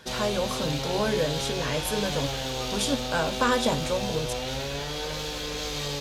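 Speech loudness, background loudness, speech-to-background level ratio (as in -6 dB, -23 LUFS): -29.0 LUFS, -30.5 LUFS, 1.5 dB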